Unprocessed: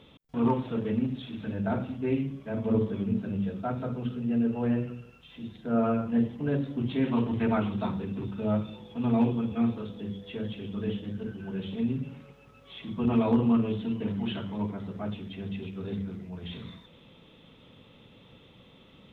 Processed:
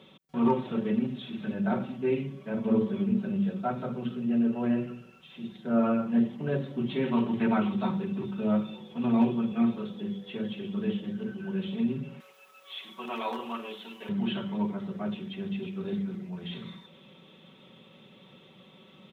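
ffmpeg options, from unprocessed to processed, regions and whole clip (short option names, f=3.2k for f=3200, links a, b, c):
-filter_complex "[0:a]asettb=1/sr,asplit=3[a][b][c];[a]atrim=end=12.204[d];[b]atrim=start=12.2:end=14.09,asetpts=PTS-STARTPTS,afade=t=in:d=0.004:c=qsin,afade=t=out:st=1.886:d=0.004:c=qsin,highpass=670,aemphasis=mode=production:type=50kf[e];[c]atrim=start=14.086[f];[d][e]acrossfade=d=0.004:c1=hsin:c2=qsin[g];[g][f]acrossfade=d=0.004:c1=qsin:c2=hsin,highpass=140,aecho=1:1:5.3:0.62"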